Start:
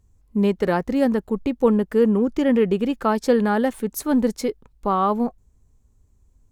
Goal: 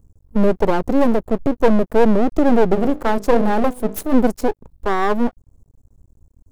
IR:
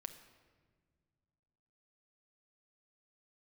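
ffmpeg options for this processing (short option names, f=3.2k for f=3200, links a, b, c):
-filter_complex "[0:a]acrossover=split=1000[a][b];[a]acontrast=87[c];[b]aderivative[d];[c][d]amix=inputs=2:normalize=0,asplit=3[e][f][g];[e]afade=t=out:st=2.74:d=0.02[h];[f]bandreject=f=50:t=h:w=6,bandreject=f=100:t=h:w=6,bandreject=f=150:t=h:w=6,bandreject=f=200:t=h:w=6,bandreject=f=250:t=h:w=6,bandreject=f=300:t=h:w=6,bandreject=f=350:t=h:w=6,bandreject=f=400:t=h:w=6,bandreject=f=450:t=h:w=6,bandreject=f=500:t=h:w=6,afade=t=in:st=2.74:d=0.02,afade=t=out:st=4.11:d=0.02[i];[g]afade=t=in:st=4.11:d=0.02[j];[h][i][j]amix=inputs=3:normalize=0,aeval=exprs='max(val(0),0)':c=same,volume=3dB"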